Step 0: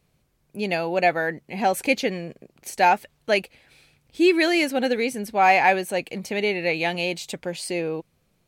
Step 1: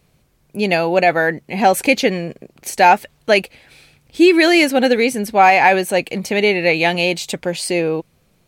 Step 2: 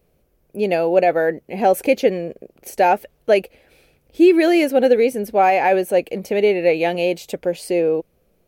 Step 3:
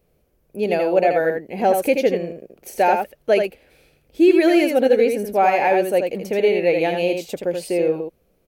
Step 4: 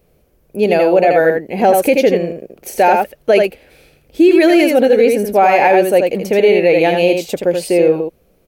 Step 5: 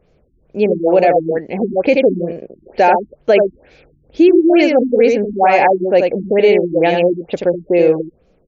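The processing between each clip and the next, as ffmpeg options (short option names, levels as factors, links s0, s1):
-af "alimiter=level_in=2.99:limit=0.891:release=50:level=0:latency=1,volume=0.891"
-af "equalizer=f=125:t=o:w=1:g=-10,equalizer=f=250:t=o:w=1:g=-3,equalizer=f=500:t=o:w=1:g=5,equalizer=f=1000:t=o:w=1:g=-8,equalizer=f=2000:t=o:w=1:g=-6,equalizer=f=4000:t=o:w=1:g=-9,equalizer=f=8000:t=o:w=1:g=-10"
-af "aecho=1:1:81:0.531,volume=0.794"
-af "alimiter=limit=0.299:level=0:latency=1:release=19,volume=2.51"
-af "afftfilt=real='re*lt(b*sr/1024,330*pow(7500/330,0.5+0.5*sin(2*PI*2.2*pts/sr)))':imag='im*lt(b*sr/1024,330*pow(7500/330,0.5+0.5*sin(2*PI*2.2*pts/sr)))':win_size=1024:overlap=0.75"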